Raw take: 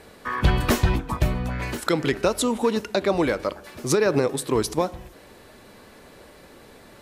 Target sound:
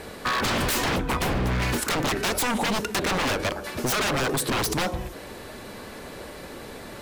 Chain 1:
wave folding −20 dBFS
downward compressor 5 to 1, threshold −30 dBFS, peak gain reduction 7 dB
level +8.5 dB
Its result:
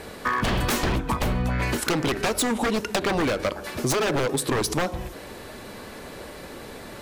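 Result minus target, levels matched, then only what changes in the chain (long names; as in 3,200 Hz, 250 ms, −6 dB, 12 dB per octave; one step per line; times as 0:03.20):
wave folding: distortion −10 dB
change: wave folding −26 dBFS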